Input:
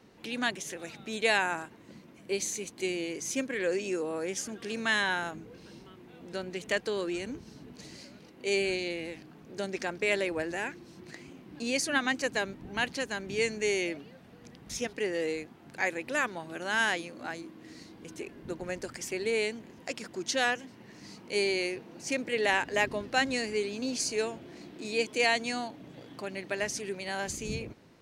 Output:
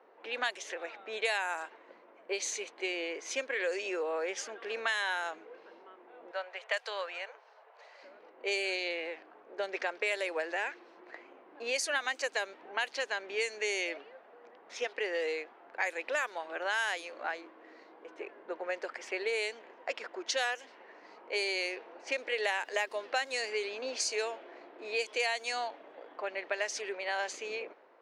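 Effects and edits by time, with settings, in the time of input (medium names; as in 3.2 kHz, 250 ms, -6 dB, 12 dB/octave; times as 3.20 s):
6.31–8.03 s: inverse Chebyshev high-pass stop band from 280 Hz
whole clip: high-pass 480 Hz 24 dB/octave; level-controlled noise filter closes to 1.2 kHz, open at -25.5 dBFS; compression 4:1, threshold -35 dBFS; trim +5 dB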